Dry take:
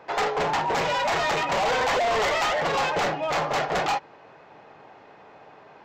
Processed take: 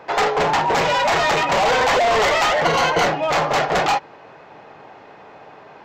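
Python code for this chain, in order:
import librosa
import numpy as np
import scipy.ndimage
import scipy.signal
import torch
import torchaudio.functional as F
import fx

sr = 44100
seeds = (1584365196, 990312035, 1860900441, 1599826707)

y = fx.ripple_eq(x, sr, per_octave=1.9, db=9, at=(2.65, 3.05))
y = y * librosa.db_to_amplitude(6.5)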